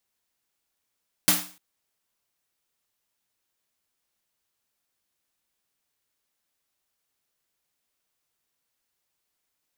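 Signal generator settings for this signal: snare drum length 0.30 s, tones 180 Hz, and 300 Hz, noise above 530 Hz, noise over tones 11 dB, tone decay 0.39 s, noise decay 0.40 s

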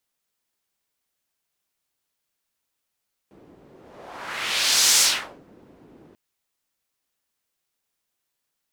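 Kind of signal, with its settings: whoosh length 2.84 s, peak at 1.69 s, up 1.44 s, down 0.44 s, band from 310 Hz, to 6.3 kHz, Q 1.3, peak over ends 35 dB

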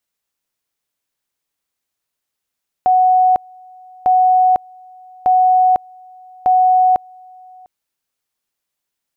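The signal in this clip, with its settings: two-level tone 740 Hz -8.5 dBFS, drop 29 dB, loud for 0.50 s, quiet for 0.70 s, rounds 4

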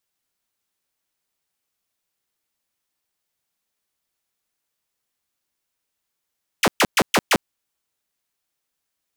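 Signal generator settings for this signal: burst of laser zaps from 3.6 kHz, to 140 Hz, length 0.05 s saw, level -10.5 dB, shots 5, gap 0.12 s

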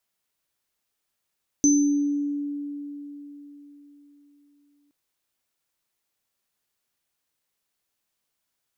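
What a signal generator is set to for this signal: sine partials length 3.27 s, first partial 288 Hz, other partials 6.12 kHz, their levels -2.5 dB, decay 4.08 s, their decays 0.71 s, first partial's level -15 dB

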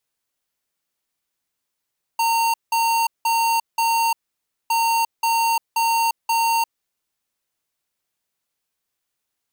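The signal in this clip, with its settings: beep pattern square 917 Hz, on 0.35 s, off 0.18 s, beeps 4, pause 0.57 s, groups 2, -19 dBFS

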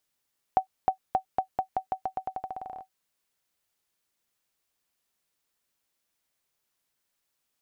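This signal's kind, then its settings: bouncing ball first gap 0.31 s, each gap 0.87, 758 Hz, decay 100 ms -11.5 dBFS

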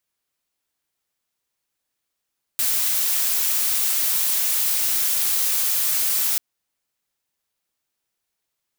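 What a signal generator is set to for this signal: noise blue, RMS -21 dBFS 3.79 s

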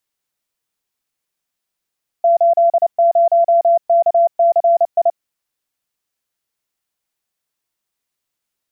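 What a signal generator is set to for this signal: Morse "80KCI" 29 wpm 680 Hz -8.5 dBFS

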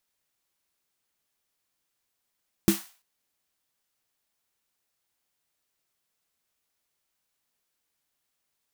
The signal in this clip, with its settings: snare drum length 0.34 s, tones 200 Hz, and 330 Hz, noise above 690 Hz, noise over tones -10 dB, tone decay 0.16 s, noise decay 0.40 s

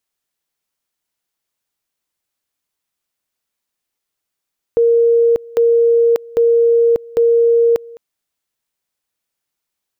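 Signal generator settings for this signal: two-level tone 466 Hz -8.5 dBFS, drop 23.5 dB, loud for 0.59 s, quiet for 0.21 s, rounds 4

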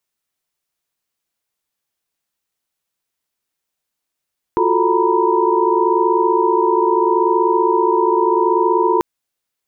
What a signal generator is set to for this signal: chord F4/F#4/A4/A#5/B5 sine, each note -18.5 dBFS 4.44 s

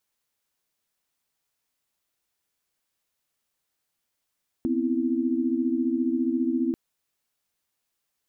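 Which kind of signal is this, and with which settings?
chord B3/C4/E4 sine, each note -26.5 dBFS 2.09 s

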